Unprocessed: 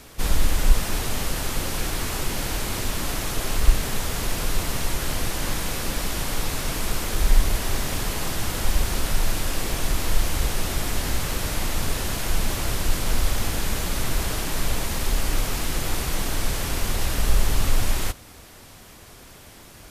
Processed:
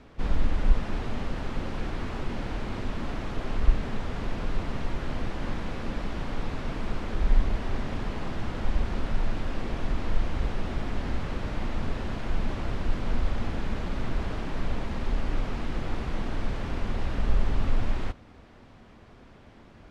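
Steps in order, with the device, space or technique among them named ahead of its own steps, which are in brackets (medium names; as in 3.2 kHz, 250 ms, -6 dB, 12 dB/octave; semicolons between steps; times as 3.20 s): phone in a pocket (low-pass 3.8 kHz 12 dB/octave; peaking EQ 230 Hz +5 dB 0.45 oct; treble shelf 2.3 kHz -10.5 dB); trim -4 dB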